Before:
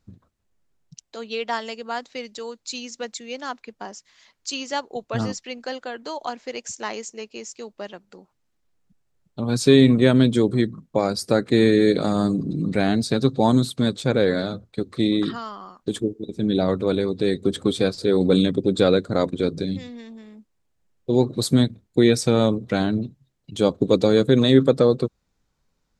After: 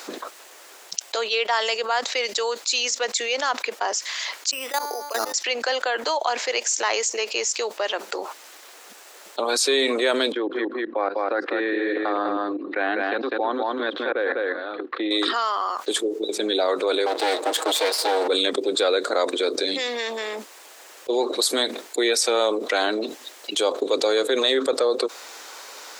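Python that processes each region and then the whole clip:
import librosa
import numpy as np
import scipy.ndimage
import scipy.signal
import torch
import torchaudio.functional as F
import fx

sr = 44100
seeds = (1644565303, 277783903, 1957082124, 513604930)

y = fx.chain(x, sr, fx.level_steps(step_db=24),
    fx.comb_fb(f0_hz=290.0, decay_s=0.75, harmonics='all', damping=0.0, mix_pct=40),
    fx.resample_bad(factor=8, down='filtered', up='hold'), at=(4.51, 5.34))
y = fx.chain(y, sr, fx.level_steps(step_db=22),
    fx.cabinet(low_hz=280.0, low_slope=12, high_hz=2300.0, hz=(300.0, 430.0, 630.0, 900.0, 1300.0, 2200.0), db=(3, -9, -9, -6, -5, -9)),
    fx.echo_single(ms=201, db=-4.5), at=(10.32, 15.11))
y = fx.chain(y, sr, fx.lower_of_two(delay_ms=6.3),
    fx.highpass(hz=240.0, slope=24), at=(17.06, 18.28))
y = scipy.signal.sosfilt(scipy.signal.bessel(8, 640.0, 'highpass', norm='mag', fs=sr, output='sos'), y)
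y = fx.env_flatten(y, sr, amount_pct=70)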